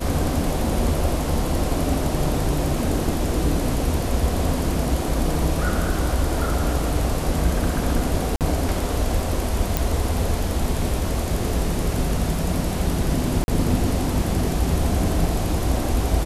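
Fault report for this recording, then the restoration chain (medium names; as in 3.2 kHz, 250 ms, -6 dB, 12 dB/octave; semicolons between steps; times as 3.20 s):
8.36–8.41 s: dropout 48 ms
9.77 s: pop
13.44–13.48 s: dropout 41 ms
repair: de-click; interpolate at 8.36 s, 48 ms; interpolate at 13.44 s, 41 ms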